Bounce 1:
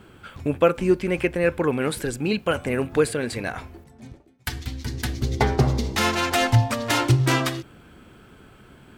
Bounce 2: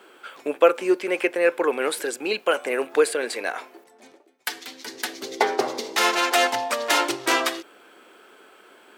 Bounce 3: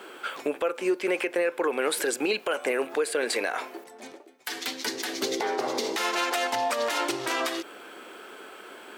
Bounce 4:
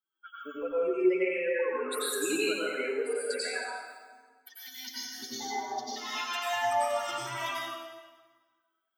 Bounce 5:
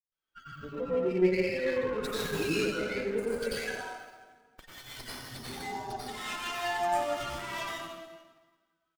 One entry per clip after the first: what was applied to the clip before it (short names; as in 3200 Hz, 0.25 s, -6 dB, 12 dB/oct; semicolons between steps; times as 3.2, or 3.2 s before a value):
HPF 370 Hz 24 dB/oct; gain +2.5 dB
compressor 5:1, threshold -28 dBFS, peak gain reduction 16 dB; limiter -23 dBFS, peak gain reduction 11 dB; gain +6.5 dB
per-bin expansion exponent 3; plate-style reverb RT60 1.4 s, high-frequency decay 0.85×, pre-delay 80 ms, DRR -9 dB; gain -6 dB
octaver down 1 oct, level +1 dB; three bands offset in time lows, highs, mids 0.12/0.17 s, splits 160/980 Hz; running maximum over 5 samples